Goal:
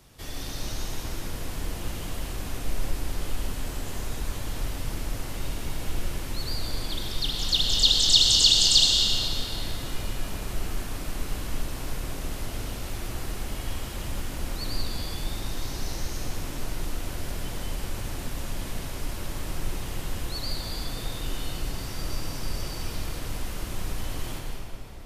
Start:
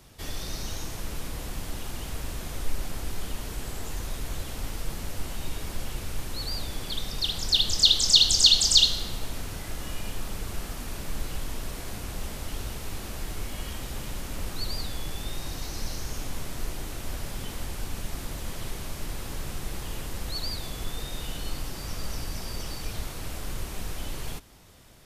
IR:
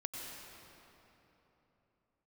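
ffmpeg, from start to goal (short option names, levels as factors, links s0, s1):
-filter_complex "[1:a]atrim=start_sample=2205[s0];[0:a][s0]afir=irnorm=-1:irlink=0,volume=1.19"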